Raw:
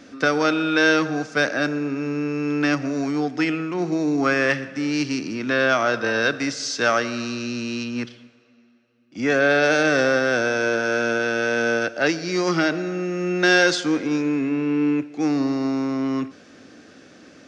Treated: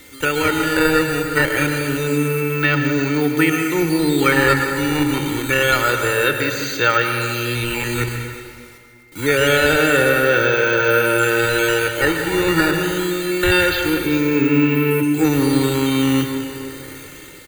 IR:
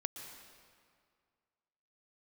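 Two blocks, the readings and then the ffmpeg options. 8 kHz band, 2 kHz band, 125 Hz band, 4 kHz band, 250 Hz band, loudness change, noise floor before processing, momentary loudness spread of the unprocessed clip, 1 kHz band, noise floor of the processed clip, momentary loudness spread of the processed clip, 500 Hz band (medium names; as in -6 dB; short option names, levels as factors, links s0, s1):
+7.0 dB, +4.0 dB, +9.5 dB, +5.5 dB, +3.5 dB, +4.5 dB, -50 dBFS, 9 LU, +5.0 dB, -39 dBFS, 7 LU, +4.0 dB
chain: -filter_complex "[0:a]acrusher=samples=8:mix=1:aa=0.000001:lfo=1:lforange=12.8:lforate=0.26,asuperstop=centerf=5400:order=20:qfactor=5.1,highshelf=f=6200:g=4.5,dynaudnorm=f=130:g=7:m=2.51,asplit=2[s0][s1];[s1]adelay=361.5,volume=0.112,highshelf=f=4000:g=-8.13[s2];[s0][s2]amix=inputs=2:normalize=0,acrossover=split=3000[s3][s4];[s4]acompressor=threshold=0.0158:ratio=4:attack=1:release=60[s5];[s3][s5]amix=inputs=2:normalize=0,equalizer=f=640:w=0.48:g=-11.5,acrusher=bits=8:mix=0:aa=0.000001,aecho=1:1:2.2:0.8[s6];[1:a]atrim=start_sample=2205[s7];[s6][s7]afir=irnorm=-1:irlink=0,aeval=exprs='val(0)+0.00158*sin(2*PI*2100*n/s)':c=same,volume=2.37"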